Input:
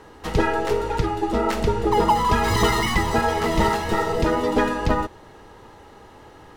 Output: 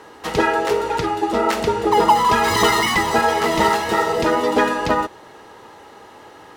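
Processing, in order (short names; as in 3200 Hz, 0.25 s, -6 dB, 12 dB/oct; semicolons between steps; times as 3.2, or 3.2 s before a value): HPF 370 Hz 6 dB/oct; gain +5.5 dB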